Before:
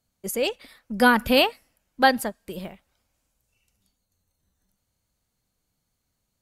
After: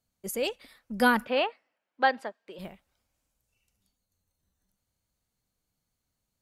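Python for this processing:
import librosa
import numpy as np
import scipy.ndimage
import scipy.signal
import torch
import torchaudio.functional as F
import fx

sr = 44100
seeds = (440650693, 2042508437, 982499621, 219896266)

y = fx.bandpass_edges(x, sr, low_hz=410.0, high_hz=fx.line((1.24, 2200.0), (2.58, 3700.0)), at=(1.24, 2.58), fade=0.02)
y = y * librosa.db_to_amplitude(-5.0)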